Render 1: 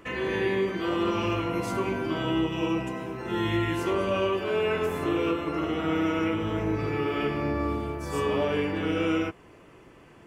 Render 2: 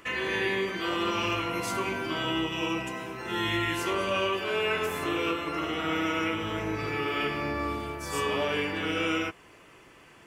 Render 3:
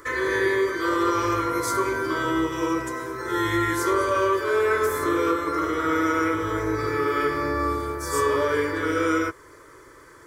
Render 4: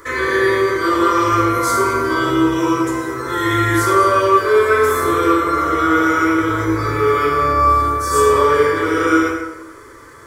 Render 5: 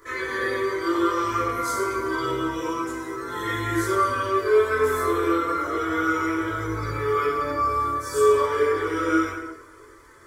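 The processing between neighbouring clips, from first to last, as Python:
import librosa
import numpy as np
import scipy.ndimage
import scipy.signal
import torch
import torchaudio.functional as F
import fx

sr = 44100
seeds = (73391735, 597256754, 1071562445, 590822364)

y1 = fx.tilt_shelf(x, sr, db=-6.0, hz=970.0)
y2 = fx.fixed_phaser(y1, sr, hz=740.0, stages=6)
y2 = F.gain(torch.from_numpy(y2), 8.5).numpy()
y3 = fx.rev_plate(y2, sr, seeds[0], rt60_s=0.97, hf_ratio=0.75, predelay_ms=0, drr_db=-2.5)
y3 = F.gain(torch.from_numpy(y3), 3.5).numpy()
y4 = fx.chorus_voices(y3, sr, voices=4, hz=0.25, base_ms=21, depth_ms=2.8, mix_pct=55)
y4 = F.gain(torch.from_numpy(y4), -6.0).numpy()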